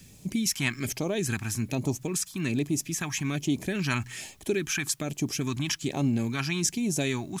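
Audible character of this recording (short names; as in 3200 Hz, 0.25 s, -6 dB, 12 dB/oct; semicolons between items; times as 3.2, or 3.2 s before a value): phasing stages 2, 1.2 Hz, lowest notch 470–1500 Hz; a quantiser's noise floor 12-bit, dither triangular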